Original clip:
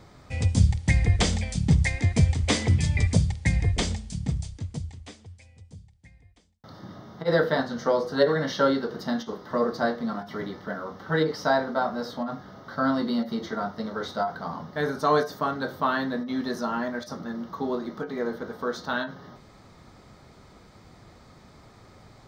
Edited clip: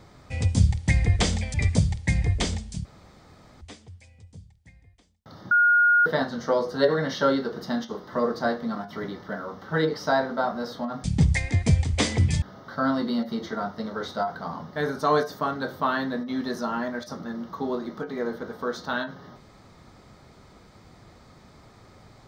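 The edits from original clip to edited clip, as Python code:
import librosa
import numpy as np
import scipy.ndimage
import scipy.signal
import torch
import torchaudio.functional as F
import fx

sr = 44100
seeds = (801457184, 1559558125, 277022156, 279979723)

y = fx.edit(x, sr, fx.move(start_s=1.54, length_s=1.38, to_s=12.42),
    fx.room_tone_fill(start_s=4.23, length_s=0.76),
    fx.bleep(start_s=6.89, length_s=0.55, hz=1430.0, db=-15.0), tone=tone)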